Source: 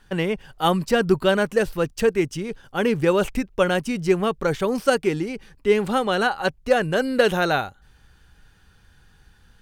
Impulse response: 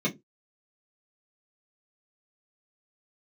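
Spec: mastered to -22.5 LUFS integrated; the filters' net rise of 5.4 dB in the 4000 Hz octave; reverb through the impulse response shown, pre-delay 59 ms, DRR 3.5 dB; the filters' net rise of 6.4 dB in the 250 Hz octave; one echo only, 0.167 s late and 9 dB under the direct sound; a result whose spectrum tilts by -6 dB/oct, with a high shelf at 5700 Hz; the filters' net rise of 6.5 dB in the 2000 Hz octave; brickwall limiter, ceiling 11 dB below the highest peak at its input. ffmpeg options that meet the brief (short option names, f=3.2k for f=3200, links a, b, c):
-filter_complex "[0:a]equalizer=f=250:t=o:g=8.5,equalizer=f=2k:t=o:g=8.5,equalizer=f=4k:t=o:g=5,highshelf=f=5.7k:g=-5,alimiter=limit=-11dB:level=0:latency=1,aecho=1:1:167:0.355,asplit=2[a][b];[1:a]atrim=start_sample=2205,adelay=59[c];[b][c]afir=irnorm=-1:irlink=0,volume=-12.5dB[d];[a][d]amix=inputs=2:normalize=0,volume=-7dB"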